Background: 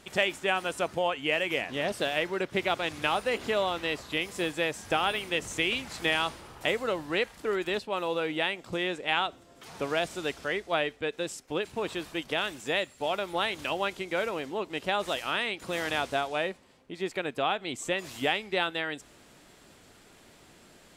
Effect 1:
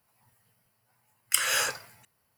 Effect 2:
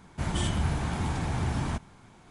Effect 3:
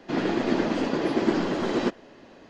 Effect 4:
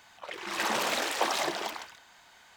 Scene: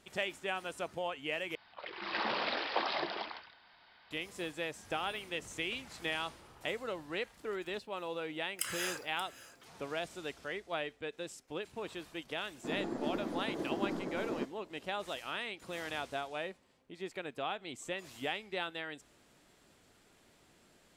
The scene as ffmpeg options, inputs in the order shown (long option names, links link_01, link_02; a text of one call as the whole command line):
ffmpeg -i bed.wav -i cue0.wav -i cue1.wav -i cue2.wav -i cue3.wav -filter_complex "[0:a]volume=-9.5dB[link_01];[4:a]aresample=11025,aresample=44100[link_02];[1:a]aecho=1:1:580:0.15[link_03];[3:a]equalizer=frequency=2800:width=1.2:gain=-14.5[link_04];[link_01]asplit=2[link_05][link_06];[link_05]atrim=end=1.554[link_07];[link_02]atrim=end=2.56,asetpts=PTS-STARTPTS,volume=-5dB[link_08];[link_06]atrim=start=4.106[link_09];[link_03]atrim=end=2.37,asetpts=PTS-STARTPTS,volume=-12.5dB,afade=type=in:duration=0.004:curve=hsin,afade=type=out:start_time=2.366:duration=0.004:curve=hsin,adelay=7270[link_10];[link_04]atrim=end=2.49,asetpts=PTS-STARTPTS,volume=-12.5dB,afade=type=in:duration=0.004:curve=hsin,afade=type=out:start_time=2.486:duration=0.004:curve=hsin,adelay=12550[link_11];[link_07][link_08]acrossfade=duration=0.004:curve1=hsin:curve2=hsin[link_12];[link_12][link_09]acrossfade=duration=0.004:curve1=hsin:curve2=hsin[link_13];[link_13][link_10][link_11]amix=inputs=3:normalize=0" out.wav